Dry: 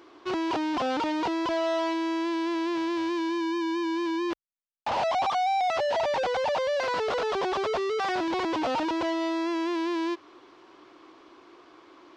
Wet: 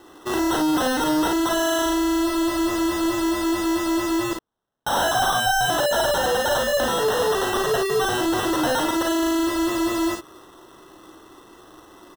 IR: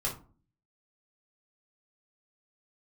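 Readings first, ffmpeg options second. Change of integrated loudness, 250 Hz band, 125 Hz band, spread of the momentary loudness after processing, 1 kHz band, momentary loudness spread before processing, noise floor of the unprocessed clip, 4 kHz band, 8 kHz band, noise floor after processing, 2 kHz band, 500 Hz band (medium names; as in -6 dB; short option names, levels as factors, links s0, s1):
+6.5 dB, +6.5 dB, +15.0 dB, 4 LU, +4.0 dB, 3 LU, -55 dBFS, +9.5 dB, no reading, -49 dBFS, +8.0 dB, +5.0 dB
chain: -af "highshelf=f=5700:g=9.5,acrusher=samples=19:mix=1:aa=0.000001,aecho=1:1:39|55:0.501|0.531,volume=1.5"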